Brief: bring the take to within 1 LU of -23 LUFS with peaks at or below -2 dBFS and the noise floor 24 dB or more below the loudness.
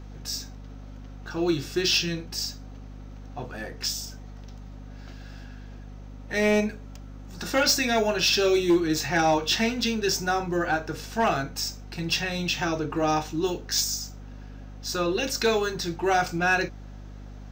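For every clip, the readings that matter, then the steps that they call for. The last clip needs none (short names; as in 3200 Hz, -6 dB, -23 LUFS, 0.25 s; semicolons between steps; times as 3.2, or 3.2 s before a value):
clipped 0.3%; flat tops at -15.0 dBFS; hum 50 Hz; harmonics up to 250 Hz; hum level -39 dBFS; loudness -25.5 LUFS; peak -15.0 dBFS; loudness target -23.0 LUFS
-> clip repair -15 dBFS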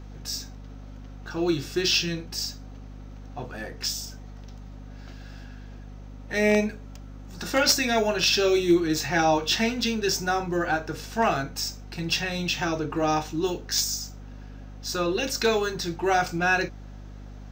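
clipped 0.0%; hum 50 Hz; harmonics up to 250 Hz; hum level -39 dBFS
-> de-hum 50 Hz, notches 5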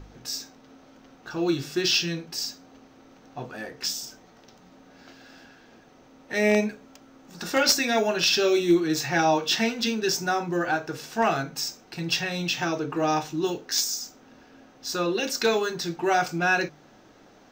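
hum none; loudness -25.0 LUFS; peak -6.0 dBFS; loudness target -23.0 LUFS
-> gain +2 dB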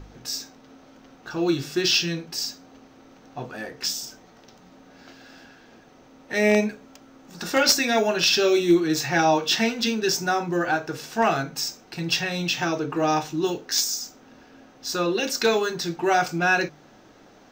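loudness -23.0 LUFS; peak -4.0 dBFS; noise floor -52 dBFS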